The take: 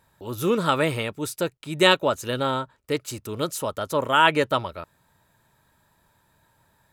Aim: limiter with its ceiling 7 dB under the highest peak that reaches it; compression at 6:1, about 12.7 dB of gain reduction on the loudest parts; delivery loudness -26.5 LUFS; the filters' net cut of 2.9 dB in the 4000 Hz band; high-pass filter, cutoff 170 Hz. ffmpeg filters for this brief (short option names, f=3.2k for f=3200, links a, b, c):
-af "highpass=170,equalizer=f=4k:t=o:g=-4,acompressor=threshold=-26dB:ratio=6,volume=8dB,alimiter=limit=-13.5dB:level=0:latency=1"